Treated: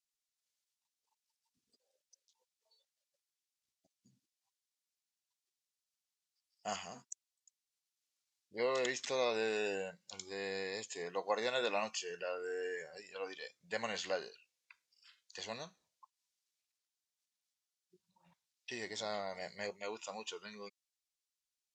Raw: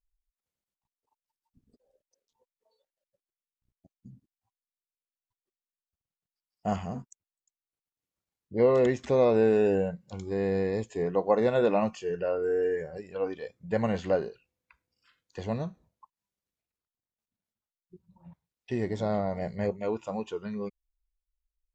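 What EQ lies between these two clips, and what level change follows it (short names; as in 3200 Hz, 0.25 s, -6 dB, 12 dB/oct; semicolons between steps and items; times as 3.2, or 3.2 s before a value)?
band-pass 5500 Hz, Q 1; +8.5 dB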